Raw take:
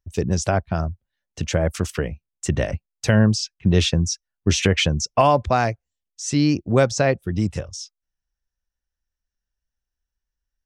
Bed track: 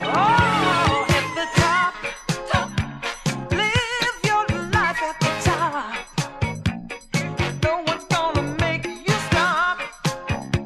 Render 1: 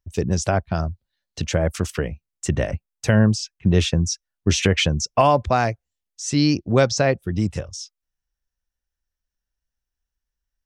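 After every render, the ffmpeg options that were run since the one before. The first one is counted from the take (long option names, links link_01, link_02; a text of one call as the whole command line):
ffmpeg -i in.wav -filter_complex "[0:a]asettb=1/sr,asplit=3[link_01][link_02][link_03];[link_01]atrim=end=0.714[link_04];[link_02]atrim=start=0.71:end=1.42,asetpts=PTS-STARTPTS,afade=type=in:duration=0.004:curve=qsin,afade=type=out:start_time=0.706:duration=0.004:curve=qsin,equalizer=frequency=4200:width=2.8:gain=10.5[link_05];[link_03]atrim=start=1.416[link_06];[link_04][link_05]acrossfade=duration=0.004:curve1=hsin:curve2=qsin[link_07];[link_07][link_06]acrossfade=duration=0.004:curve1=qsin:curve2=hsin,asettb=1/sr,asplit=3[link_08][link_09][link_10];[link_08]atrim=end=2.554[link_11];[link_09]atrim=start=2.55:end=4.07,asetpts=PTS-STARTPTS,afade=type=in:duration=0.004:curve=qsin,afade=type=out:start_time=1.516:duration=0.004:curve=qsin,equalizer=frequency=4300:width=1.2:gain=-4[link_12];[link_10]atrim=start=4.066[link_13];[link_11][link_12]acrossfade=duration=0.004:curve1=hsin:curve2=qsin[link_14];[link_14][link_13]acrossfade=duration=0.004:curve1=qsin:curve2=hsin,asettb=1/sr,asplit=3[link_15][link_16][link_17];[link_15]atrim=end=6.374[link_18];[link_16]atrim=start=6.37:end=6.97,asetpts=PTS-STARTPTS,afade=type=in:duration=0.004:curve=qsin,afade=type=out:start_time=0.596:duration=0.004:curve=qsin,lowpass=frequency=5200:width_type=q:width=2[link_19];[link_17]atrim=start=6.966[link_20];[link_18][link_19]acrossfade=duration=0.004:curve1=hsin:curve2=qsin[link_21];[link_21][link_20]acrossfade=duration=0.004:curve1=qsin:curve2=hsin" out.wav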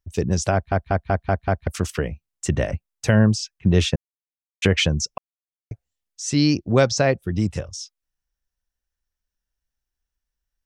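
ffmpeg -i in.wav -filter_complex "[0:a]asplit=11[link_01][link_02][link_03][link_04][link_05][link_06][link_07][link_08][link_09][link_10][link_11];[link_01]atrim=end=0.722[link_12];[link_02]atrim=start=0.528:end=0.722[link_13];[link_03]atrim=start=0.528:end=0.722[link_14];[link_04]atrim=start=0.528:end=0.722[link_15];[link_05]atrim=start=0.528:end=0.722[link_16];[link_06]atrim=start=0.528:end=0.722[link_17];[link_07]atrim=start=1.668:end=3.96,asetpts=PTS-STARTPTS,afade=type=out:start_time=2.288:duration=0.004:curve=hsin[link_18];[link_08]atrim=start=3.96:end=4.62,asetpts=PTS-STARTPTS,volume=0[link_19];[link_09]atrim=start=4.62:end=5.18,asetpts=PTS-STARTPTS,afade=type=in:duration=0.004:curve=hsin,afade=type=out:start_time=0.556:duration=0.004:curve=hsin[link_20];[link_10]atrim=start=5.18:end=5.71,asetpts=PTS-STARTPTS,volume=0[link_21];[link_11]atrim=start=5.71,asetpts=PTS-STARTPTS,afade=type=in:duration=0.004:curve=hsin[link_22];[link_12][link_13]acrossfade=duration=0.004:curve1=hsin:curve2=hsin[link_23];[link_23][link_14]acrossfade=duration=0.004:curve1=hsin:curve2=hsin[link_24];[link_24][link_15]acrossfade=duration=0.004:curve1=hsin:curve2=hsin[link_25];[link_25][link_16]acrossfade=duration=0.004:curve1=hsin:curve2=hsin[link_26];[link_26][link_17]acrossfade=duration=0.004:curve1=hsin:curve2=hsin[link_27];[link_18][link_19][link_20][link_21][link_22]concat=n=5:v=0:a=1[link_28];[link_27][link_28]acrossfade=duration=0.004:curve1=hsin:curve2=hsin" out.wav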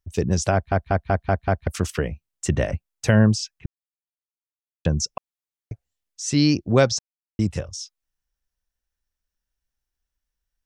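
ffmpeg -i in.wav -filter_complex "[0:a]asplit=5[link_01][link_02][link_03][link_04][link_05];[link_01]atrim=end=3.66,asetpts=PTS-STARTPTS,afade=type=out:start_time=3.656:duration=0.004:curve=hsin[link_06];[link_02]atrim=start=3.66:end=4.85,asetpts=PTS-STARTPTS,volume=0[link_07];[link_03]atrim=start=4.85:end=6.99,asetpts=PTS-STARTPTS,afade=type=in:duration=0.004:curve=hsin,afade=type=out:start_time=2.136:duration=0.004:curve=hsin[link_08];[link_04]atrim=start=6.99:end=7.39,asetpts=PTS-STARTPTS,volume=0[link_09];[link_05]atrim=start=7.39,asetpts=PTS-STARTPTS,afade=type=in:duration=0.004:curve=hsin[link_10];[link_06][link_07][link_08][link_09][link_10]concat=n=5:v=0:a=1" out.wav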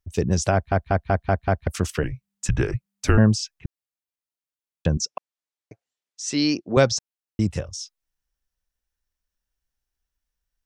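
ffmpeg -i in.wav -filter_complex "[0:a]asettb=1/sr,asplit=3[link_01][link_02][link_03];[link_01]atrim=end=2.034[link_04];[link_02]atrim=start=2.03:end=3.18,asetpts=PTS-STARTPTS,afade=type=in:duration=0.004:curve=qsin,afade=type=out:start_time=1.146:duration=0.004:curve=qsin,afreqshift=-200[link_05];[link_03]atrim=start=3.176[link_06];[link_04][link_05]acrossfade=duration=0.004:curve1=hsin:curve2=qsin[link_07];[link_07][link_06]acrossfade=duration=0.004:curve1=qsin:curve2=hsin,asettb=1/sr,asplit=3[link_08][link_09][link_10];[link_08]atrim=end=4.974[link_11];[link_09]atrim=start=4.97:end=6.77,asetpts=PTS-STARTPTS,afade=type=in:duration=0.004:curve=qsin,afade=type=out:start_time=1.796:duration=0.004:curve=qsin,highpass=290,lowpass=7900[link_12];[link_10]atrim=start=6.766[link_13];[link_11][link_12]acrossfade=duration=0.004:curve1=hsin:curve2=qsin[link_14];[link_14][link_13]acrossfade=duration=0.004:curve1=qsin:curve2=hsin" out.wav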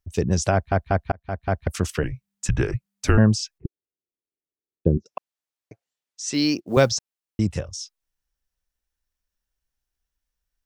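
ffmpeg -i in.wav -filter_complex "[0:a]asettb=1/sr,asplit=3[link_01][link_02][link_03];[link_01]atrim=end=3.584[link_04];[link_02]atrim=start=3.58:end=5.06,asetpts=PTS-STARTPTS,afade=type=in:duration=0.004:curve=qsin,afade=type=out:start_time=1.476:duration=0.004:curve=qsin,lowpass=frequency=390:width_type=q:width=3.7[link_05];[link_03]atrim=start=5.056[link_06];[link_04][link_05]acrossfade=duration=0.004:curve1=hsin:curve2=qsin[link_07];[link_07][link_06]acrossfade=duration=0.004:curve1=qsin:curve2=hsin,asettb=1/sr,asplit=3[link_08][link_09][link_10];[link_08]atrim=end=6.334[link_11];[link_09]atrim=start=6.33:end=6.96,asetpts=PTS-STARTPTS,afade=type=in:duration=0.004:curve=qsin,afade=type=out:start_time=0.626:duration=0.004:curve=qsin,acrusher=bits=9:mode=log:mix=0:aa=0.000001[link_12];[link_10]atrim=start=6.956[link_13];[link_11][link_12]acrossfade=duration=0.004:curve1=hsin:curve2=qsin[link_14];[link_14][link_13]acrossfade=duration=0.004:curve1=qsin:curve2=hsin,asplit=2[link_15][link_16];[link_15]atrim=end=1.12,asetpts=PTS-STARTPTS,afade=type=out:start_time=1.116:duration=0.004:curve=hsin[link_17];[link_16]atrim=start=1.12,asetpts=PTS-STARTPTS,afade=type=in:duration=0.49[link_18];[link_17][link_18]concat=n=2:v=0:a=1" out.wav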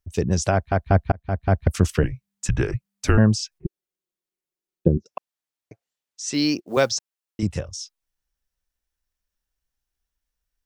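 ffmpeg -i in.wav -filter_complex "[0:a]asettb=1/sr,asplit=3[link_01][link_02][link_03];[link_01]atrim=end=0.864[link_04];[link_02]atrim=start=0.86:end=2.06,asetpts=PTS-STARTPTS,afade=type=in:duration=0.004:curve=qsin,afade=type=out:start_time=1.196:duration=0.004:curve=qsin,lowshelf=frequency=370:gain=7[link_05];[link_03]atrim=start=2.056[link_06];[link_04][link_05]acrossfade=duration=0.004:curve1=hsin:curve2=qsin[link_07];[link_07][link_06]acrossfade=duration=0.004:curve1=qsin:curve2=hsin,asettb=1/sr,asplit=3[link_08][link_09][link_10];[link_08]atrim=end=3.514[link_11];[link_09]atrim=start=3.51:end=4.88,asetpts=PTS-STARTPTS,afade=type=in:duration=0.004:curve=qsin,afade=type=out:start_time=1.366:duration=0.004:curve=qsin,aecho=1:1:5.5:0.96,atrim=end_sample=60417[link_12];[link_10]atrim=start=4.876[link_13];[link_11][link_12]acrossfade=duration=0.004:curve1=hsin:curve2=qsin[link_14];[link_14][link_13]acrossfade=duration=0.004:curve1=qsin:curve2=hsin,asettb=1/sr,asplit=3[link_15][link_16][link_17];[link_15]atrim=end=6.604[link_18];[link_16]atrim=start=6.6:end=7.43,asetpts=PTS-STARTPTS,afade=type=in:duration=0.004:curve=qsin,afade=type=out:start_time=0.826:duration=0.004:curve=qsin,highpass=frequency=380:poles=1[link_19];[link_17]atrim=start=7.426[link_20];[link_18][link_19]acrossfade=duration=0.004:curve1=hsin:curve2=qsin[link_21];[link_21][link_20]acrossfade=duration=0.004:curve1=qsin:curve2=hsin" out.wav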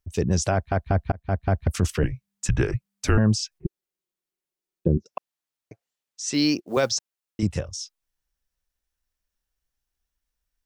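ffmpeg -i in.wav -af "alimiter=limit=-10dB:level=0:latency=1:release=20" out.wav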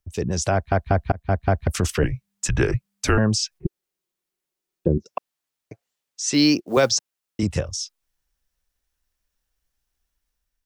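ffmpeg -i in.wav -filter_complex "[0:a]acrossover=split=340|2700[link_01][link_02][link_03];[link_01]alimiter=limit=-19.5dB:level=0:latency=1:release=68[link_04];[link_04][link_02][link_03]amix=inputs=3:normalize=0,dynaudnorm=framelen=220:gausssize=5:maxgain=5dB" out.wav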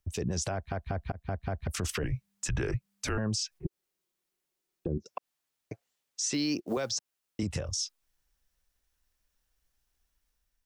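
ffmpeg -i in.wav -af "acompressor=threshold=-24dB:ratio=3,alimiter=limit=-22.5dB:level=0:latency=1:release=73" out.wav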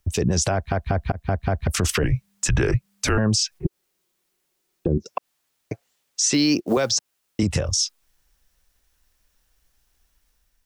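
ffmpeg -i in.wav -af "volume=11dB" out.wav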